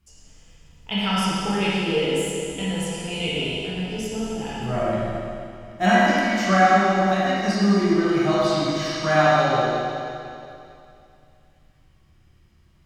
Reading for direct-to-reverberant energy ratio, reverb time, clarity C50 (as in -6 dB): -9.5 dB, 2.6 s, -5.0 dB